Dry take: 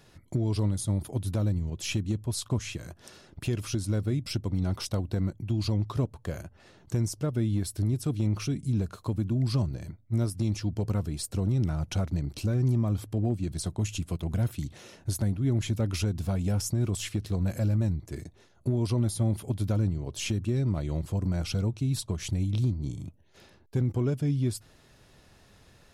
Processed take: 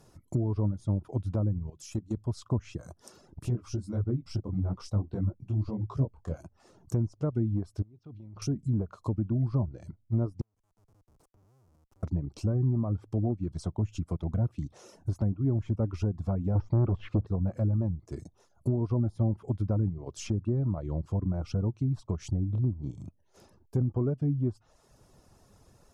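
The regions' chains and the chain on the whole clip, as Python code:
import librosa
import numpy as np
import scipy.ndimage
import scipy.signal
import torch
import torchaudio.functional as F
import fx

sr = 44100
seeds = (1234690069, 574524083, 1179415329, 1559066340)

y = fx.chain(x, sr, fx.high_shelf(hz=8100.0, db=11.5),
    fx.hum_notches(base_hz=50, count=4),
    fx.level_steps(step_db=14), at=(1.7, 2.17))
y = fx.chain(y, sr, fx.low_shelf(hz=150.0, db=4.0),
    fx.detune_double(cents=56), at=(3.42, 6.41))
y = fx.chain(y, sr, fx.lowpass(hz=3800.0, slope=24),
    fx.level_steps(step_db=22), at=(7.82, 8.42))
y = fx.chain(y, sr, fx.schmitt(flips_db=-31.0),
    fx.gate_flip(shuts_db=-32.0, range_db=-36),
    fx.band_squash(depth_pct=40), at=(10.41, 12.03))
y = fx.chain(y, sr, fx.lowpass(hz=3500.0, slope=24),
    fx.leveller(passes=2), at=(16.55, 17.27))
y = fx.env_lowpass_down(y, sr, base_hz=1300.0, full_db=-23.5)
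y = fx.dereverb_blind(y, sr, rt60_s=0.6)
y = fx.band_shelf(y, sr, hz=2600.0, db=-10.5, octaves=1.7)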